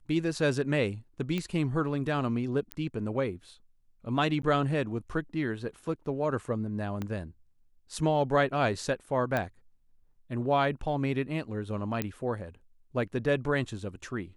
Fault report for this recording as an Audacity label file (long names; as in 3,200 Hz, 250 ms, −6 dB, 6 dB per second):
1.380000	1.380000	click −19 dBFS
2.720000	2.720000	click −19 dBFS
4.420000	4.430000	drop-out
7.020000	7.020000	click −21 dBFS
9.370000	9.370000	click −16 dBFS
12.020000	12.020000	click −15 dBFS